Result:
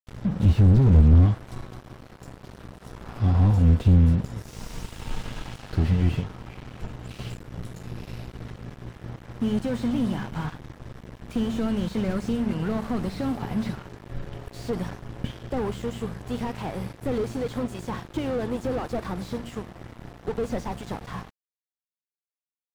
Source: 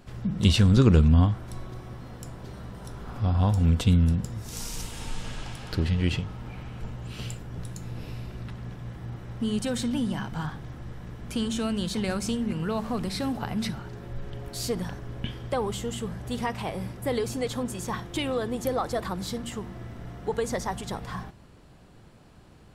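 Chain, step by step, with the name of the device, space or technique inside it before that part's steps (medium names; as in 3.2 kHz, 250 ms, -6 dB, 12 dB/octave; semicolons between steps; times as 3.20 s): early transistor amplifier (crossover distortion -40 dBFS; slew-rate limiter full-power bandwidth 17 Hz); trim +4.5 dB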